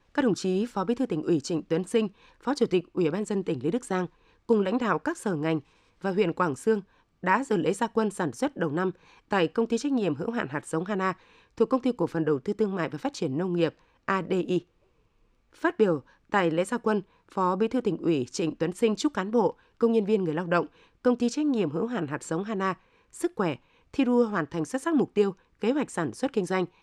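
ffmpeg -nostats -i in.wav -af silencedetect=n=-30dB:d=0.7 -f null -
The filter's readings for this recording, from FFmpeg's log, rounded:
silence_start: 14.59
silence_end: 15.64 | silence_duration: 1.06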